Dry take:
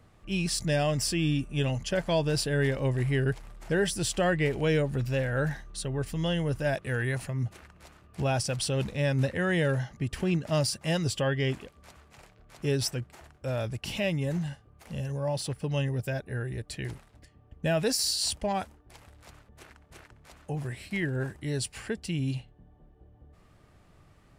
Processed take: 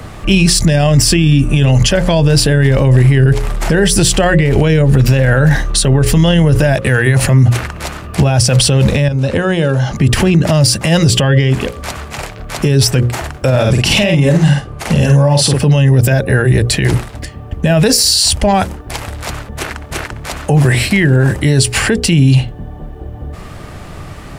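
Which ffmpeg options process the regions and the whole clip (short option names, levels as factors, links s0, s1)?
-filter_complex "[0:a]asettb=1/sr,asplit=3[s0][s1][s2];[s0]atrim=end=9.084[s3];[s1]atrim=start=9.08:end=9.96,asetpts=PTS-STARTPTS,afade=t=in:d=0.004:c=qsin,afade=t=out:st=0.876:d=0.004:c=qsin,lowpass=8700,acompressor=threshold=0.0141:ratio=16:attack=3.2:release=140:knee=1:detection=peak,equalizer=f=1900:t=o:w=0.23:g=-13[s4];[s2]atrim=start=9.956[s5];[s3][s4]acrossfade=d=0.004:c1=hsin:c2=qsin[s6];[s6][s5]acrossfade=d=0.004:c1=qsin:c2=hsin,asettb=1/sr,asplit=3[s7][s8][s9];[s7]atrim=end=13.504[s10];[s8]atrim=start=13.5:end=15.6,asetpts=PTS-STARTPTS,afade=t=in:d=0.004:c=qsin,afade=t=out:st=2.096:d=0.004:c=qsin,lowpass=11000,acompressor=threshold=0.02:ratio=3:attack=3.2:release=140:knee=1:detection=peak,asplit=2[s11][s12];[s12]adelay=49,volume=0.596[s13];[s11][s13]amix=inputs=2:normalize=0,atrim=end_sample=92610[s14];[s9]atrim=start=15.596[s15];[s10][s14]acrossfade=d=0.004:c1=hsin:c2=qsin[s16];[s16][s15]acrossfade=d=0.004:c1=qsin:c2=hsin,bandreject=f=60:t=h:w=6,bandreject=f=120:t=h:w=6,bandreject=f=180:t=h:w=6,bandreject=f=240:t=h:w=6,bandreject=f=300:t=h:w=6,bandreject=f=360:t=h:w=6,bandreject=f=420:t=h:w=6,bandreject=f=480:t=h:w=6,bandreject=f=540:t=h:w=6,acrossover=split=140[s17][s18];[s18]acompressor=threshold=0.02:ratio=6[s19];[s17][s19]amix=inputs=2:normalize=0,alimiter=level_in=33.5:limit=0.891:release=50:level=0:latency=1,volume=0.891"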